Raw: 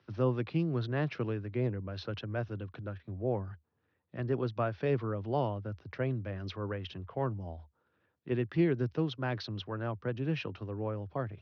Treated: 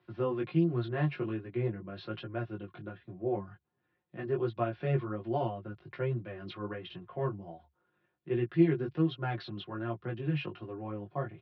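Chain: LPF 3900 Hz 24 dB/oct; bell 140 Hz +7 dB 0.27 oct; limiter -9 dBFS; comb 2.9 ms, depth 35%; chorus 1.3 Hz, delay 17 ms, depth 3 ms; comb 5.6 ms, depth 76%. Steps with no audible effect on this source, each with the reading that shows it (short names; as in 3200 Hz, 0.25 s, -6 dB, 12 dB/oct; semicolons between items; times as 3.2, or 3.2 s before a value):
limiter -9 dBFS: input peak -16.0 dBFS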